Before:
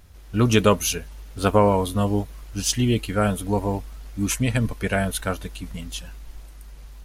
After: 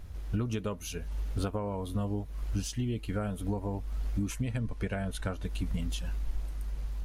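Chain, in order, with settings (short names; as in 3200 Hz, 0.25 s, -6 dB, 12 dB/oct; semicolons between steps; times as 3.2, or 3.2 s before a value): 4.58–5.45 LPF 10000 Hz 12 dB/oct; compressor 16:1, threshold -32 dBFS, peak gain reduction 21 dB; tilt -1.5 dB/oct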